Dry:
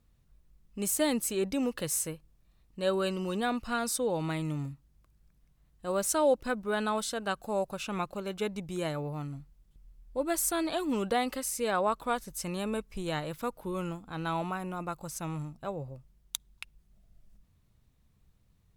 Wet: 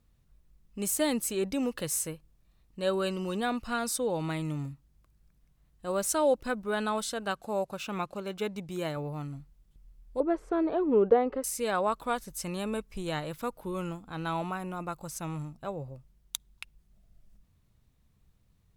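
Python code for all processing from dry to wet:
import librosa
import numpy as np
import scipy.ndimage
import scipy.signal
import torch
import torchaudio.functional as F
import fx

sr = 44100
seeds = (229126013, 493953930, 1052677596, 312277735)

y = fx.chain(x, sr, fx.highpass(hz=82.0, slope=6),
    fx.resample_linear(factor=2), at=(7.31, 8.97))
y = fx.chain(y, sr, fx.lowpass(hz=1300.0, slope=12),
    fx.peak_eq(hz=430.0, db=14.5, octaves=0.46), at=(10.2, 11.44))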